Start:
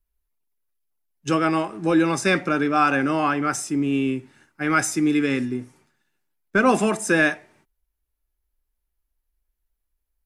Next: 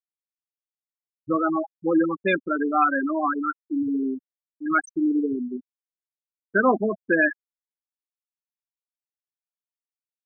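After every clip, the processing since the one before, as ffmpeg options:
ffmpeg -i in.wav -af "afftfilt=real='re*gte(hypot(re,im),0.316)':imag='im*gte(hypot(re,im),0.316)':win_size=1024:overlap=0.75,equalizer=frequency=140:width_type=o:width=0.99:gain=-10" out.wav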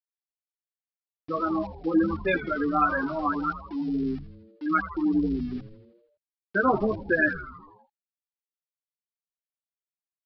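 ffmpeg -i in.wav -filter_complex "[0:a]flanger=delay=4.5:depth=8.4:regen=-9:speed=0.25:shape=sinusoidal,aresample=11025,aeval=exprs='val(0)*gte(abs(val(0)),0.00668)':channel_layout=same,aresample=44100,asplit=8[link_01][link_02][link_03][link_04][link_05][link_06][link_07][link_08];[link_02]adelay=81,afreqshift=-120,volume=-13.5dB[link_09];[link_03]adelay=162,afreqshift=-240,volume=-17.7dB[link_10];[link_04]adelay=243,afreqshift=-360,volume=-21.8dB[link_11];[link_05]adelay=324,afreqshift=-480,volume=-26dB[link_12];[link_06]adelay=405,afreqshift=-600,volume=-30.1dB[link_13];[link_07]adelay=486,afreqshift=-720,volume=-34.3dB[link_14];[link_08]adelay=567,afreqshift=-840,volume=-38.4dB[link_15];[link_01][link_09][link_10][link_11][link_12][link_13][link_14][link_15]amix=inputs=8:normalize=0" out.wav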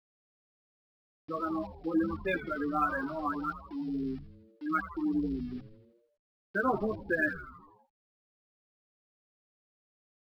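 ffmpeg -i in.wav -af "volume=-6.5dB" -ar 44100 -c:a adpcm_ima_wav out.wav

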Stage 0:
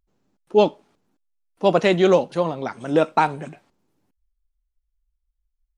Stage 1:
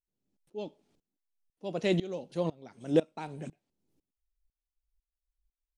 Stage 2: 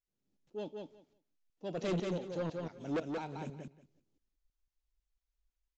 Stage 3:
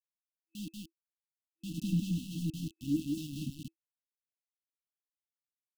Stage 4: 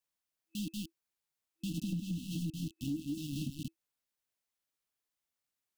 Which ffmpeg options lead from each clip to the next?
ffmpeg -i in.wav -af "equalizer=frequency=1200:width=0.84:gain=-11.5,aeval=exprs='val(0)*pow(10,-23*if(lt(mod(-2*n/s,1),2*abs(-2)/1000),1-mod(-2*n/s,1)/(2*abs(-2)/1000),(mod(-2*n/s,1)-2*abs(-2)/1000)/(1-2*abs(-2)/1000))/20)':channel_layout=same,volume=-2dB" out.wav
ffmpeg -i in.wav -af "aresample=16000,asoftclip=type=tanh:threshold=-29dB,aresample=44100,aecho=1:1:180|360|540:0.631|0.0946|0.0142,volume=-1.5dB" out.wav
ffmpeg -i in.wav -af "highshelf=frequency=2200:width_type=q:width=1.5:gain=-8.5,aeval=exprs='val(0)*gte(abs(val(0)),0.00668)':channel_layout=same,afftfilt=real='re*(1-between(b*sr/4096,330,2600))':imag='im*(1-between(b*sr/4096,330,2600))':win_size=4096:overlap=0.75,volume=6.5dB" out.wav
ffmpeg -i in.wav -af "acompressor=threshold=-41dB:ratio=6,volume=6.5dB" out.wav

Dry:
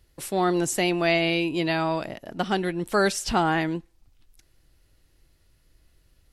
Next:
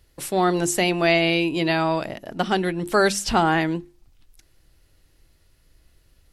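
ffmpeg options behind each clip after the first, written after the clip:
ffmpeg -i in.wav -af "bandreject=frequency=50:width_type=h:width=6,bandreject=frequency=100:width_type=h:width=6,bandreject=frequency=150:width_type=h:width=6,bandreject=frequency=200:width_type=h:width=6,bandreject=frequency=250:width_type=h:width=6,bandreject=frequency=300:width_type=h:width=6,bandreject=frequency=350:width_type=h:width=6,volume=3.5dB" out.wav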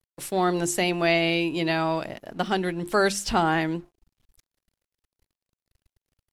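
ffmpeg -i in.wav -af "aeval=exprs='sgn(val(0))*max(abs(val(0))-0.00266,0)':channel_layout=same,volume=-3dB" out.wav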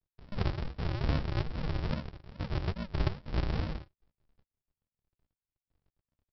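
ffmpeg -i in.wav -filter_complex "[0:a]flanger=delay=20:depth=7.8:speed=1.7,aresample=11025,acrusher=samples=38:mix=1:aa=0.000001:lfo=1:lforange=22.8:lforate=2.4,aresample=44100,asplit=2[link_01][link_02];[link_02]adelay=13,volume=-14dB[link_03];[link_01][link_03]amix=inputs=2:normalize=0,volume=-4.5dB" out.wav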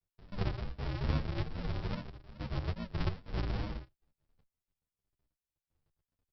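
ffmpeg -i in.wav -filter_complex "[0:a]asplit=2[link_01][link_02];[link_02]adelay=8.7,afreqshift=0.66[link_03];[link_01][link_03]amix=inputs=2:normalize=1" out.wav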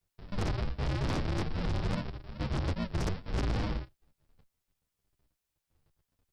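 ffmpeg -i in.wav -af "aeval=exprs='0.106*sin(PI/2*3.55*val(0)/0.106)':channel_layout=same,volume=-7dB" out.wav

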